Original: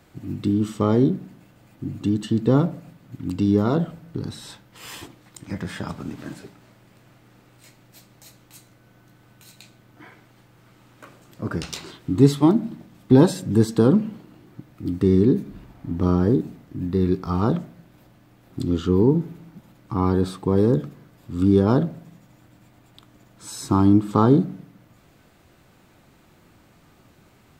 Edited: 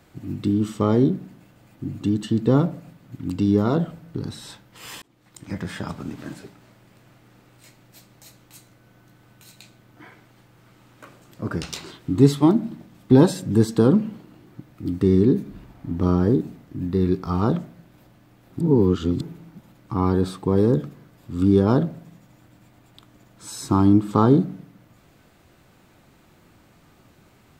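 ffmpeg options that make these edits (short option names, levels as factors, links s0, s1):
-filter_complex "[0:a]asplit=4[s0][s1][s2][s3];[s0]atrim=end=5.02,asetpts=PTS-STARTPTS,afade=t=out:st=5.016:d=0.004:c=hsin[s4];[s1]atrim=start=5.02:end=18.612,asetpts=PTS-STARTPTS,afade=t=in:d=0.44[s5];[s2]atrim=start=18.608:end=19.212,asetpts=PTS-STARTPTS,areverse[s6];[s3]atrim=start=19.208[s7];[s4][s5]concat=n=2:v=0:a=1[s8];[s8][s6]acrossfade=d=0.004:c1=hsin:c2=hsin[s9];[s9][s7]acrossfade=d=0.004:c1=hsin:c2=hsin"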